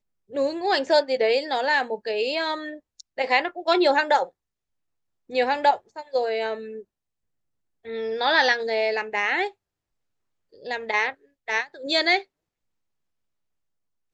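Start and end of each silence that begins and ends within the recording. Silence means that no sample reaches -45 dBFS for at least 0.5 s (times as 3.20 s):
4.29–5.29 s
6.82–7.85 s
9.51–10.54 s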